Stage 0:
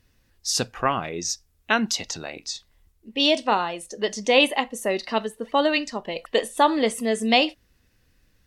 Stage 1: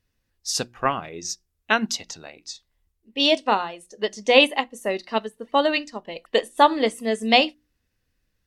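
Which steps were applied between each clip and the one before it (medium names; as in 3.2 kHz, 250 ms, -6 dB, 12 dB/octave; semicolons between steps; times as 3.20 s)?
hum notches 60/120/180/240/300/360 Hz; upward expansion 1.5:1, over -41 dBFS; trim +3.5 dB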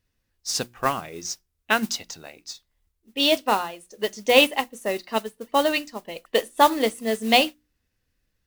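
modulation noise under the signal 17 dB; trim -1 dB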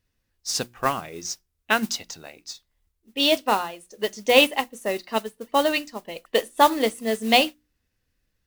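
no audible change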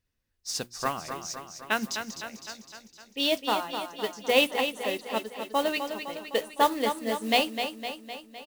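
feedback delay 255 ms, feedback 59%, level -8 dB; trim -6 dB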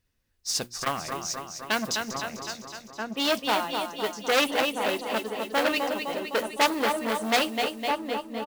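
echo from a far wall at 220 m, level -7 dB; transformer saturation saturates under 4 kHz; trim +5 dB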